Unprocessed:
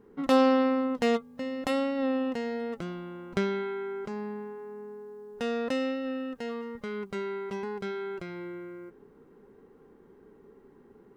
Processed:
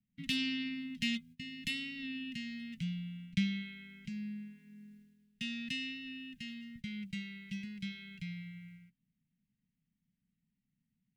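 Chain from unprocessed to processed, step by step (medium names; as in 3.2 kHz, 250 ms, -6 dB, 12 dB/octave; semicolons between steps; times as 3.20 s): three-band isolator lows -16 dB, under 180 Hz, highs -15 dB, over 2.4 kHz; gate -44 dBFS, range -19 dB; inverse Chebyshev band-stop 340–1300 Hz, stop band 50 dB; trim +12 dB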